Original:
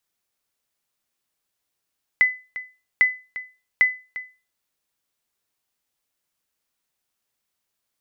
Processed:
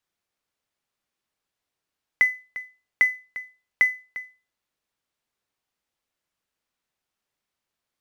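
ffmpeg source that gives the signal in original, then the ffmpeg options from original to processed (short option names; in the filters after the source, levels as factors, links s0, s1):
-f lavfi -i "aevalsrc='0.376*(sin(2*PI*2010*mod(t,0.8))*exp(-6.91*mod(t,0.8)/0.31)+0.168*sin(2*PI*2010*max(mod(t,0.8)-0.35,0))*exp(-6.91*max(mod(t,0.8)-0.35,0)/0.31))':d=2.4:s=44100"
-filter_complex "[0:a]acrossover=split=490[s0][s1];[s1]acrusher=bits=5:mode=log:mix=0:aa=0.000001[s2];[s0][s2]amix=inputs=2:normalize=0,lowpass=f=3600:p=1"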